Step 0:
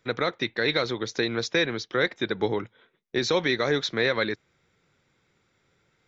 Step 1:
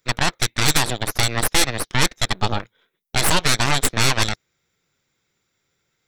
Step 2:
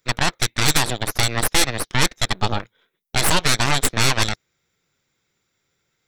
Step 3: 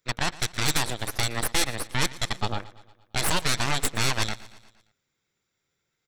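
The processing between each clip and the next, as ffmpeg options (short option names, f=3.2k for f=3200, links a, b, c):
-af "aemphasis=mode=production:type=75fm,aeval=exprs='0.355*(cos(1*acos(clip(val(0)/0.355,-1,1)))-cos(1*PI/2))+0.158*(cos(3*acos(clip(val(0)/0.355,-1,1)))-cos(3*PI/2))+0.00794*(cos(5*acos(clip(val(0)/0.355,-1,1)))-cos(5*PI/2))+0.0891*(cos(6*acos(clip(val(0)/0.355,-1,1)))-cos(6*PI/2))':c=same,volume=7dB"
-af anull
-af "aecho=1:1:116|232|348|464|580:0.112|0.064|0.0365|0.0208|0.0118,volume=-7dB"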